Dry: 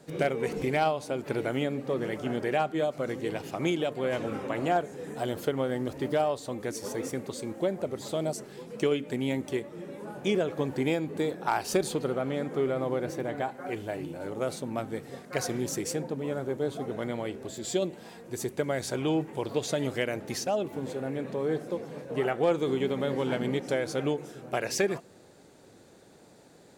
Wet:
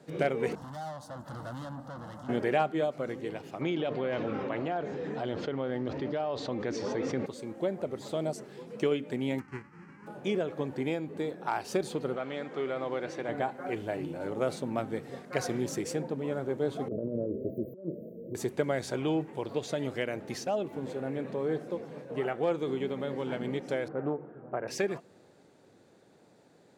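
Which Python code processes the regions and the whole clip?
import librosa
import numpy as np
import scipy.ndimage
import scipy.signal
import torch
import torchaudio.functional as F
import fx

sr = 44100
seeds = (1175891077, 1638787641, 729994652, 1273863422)

y = fx.chain(x, sr, fx.tube_stage(drive_db=36.0, bias=0.75),
    fx.fixed_phaser(hz=980.0, stages=4), at=(0.55, 2.29))
y = fx.chain(y, sr, fx.lowpass(hz=5300.0, slope=24),
    fx.env_flatten(amount_pct=70), at=(3.61, 7.26))
y = fx.envelope_flatten(y, sr, power=0.3, at=(9.38, 10.06), fade=0.02)
y = fx.spacing_loss(y, sr, db_at_10k=31, at=(9.38, 10.06), fade=0.02)
y = fx.fixed_phaser(y, sr, hz=1500.0, stages=4, at=(9.38, 10.06), fade=0.02)
y = fx.chain(y, sr, fx.lowpass(hz=4400.0, slope=12),
    fx.tilt_eq(slope=3.0), at=(12.16, 13.29))
y = fx.chain(y, sr, fx.brickwall_bandstop(low_hz=660.0, high_hz=13000.0),
    fx.over_compress(threshold_db=-35.0, ratio=-0.5), at=(16.88, 18.35))
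y = fx.chain(y, sr, fx.cvsd(bps=64000),
    fx.lowpass(hz=1500.0, slope=24),
    fx.doppler_dist(depth_ms=0.16), at=(23.88, 24.68))
y = scipy.signal.sosfilt(scipy.signal.butter(2, 88.0, 'highpass', fs=sr, output='sos'), y)
y = fx.high_shelf(y, sr, hz=5900.0, db=-9.5)
y = fx.rider(y, sr, range_db=10, speed_s=2.0)
y = y * 10.0 ** (-4.0 / 20.0)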